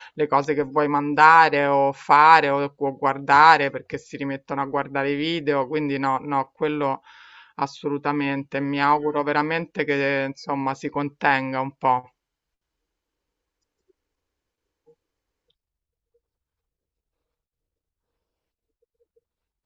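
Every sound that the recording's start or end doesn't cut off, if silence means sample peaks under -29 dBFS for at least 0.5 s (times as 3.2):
7.59–12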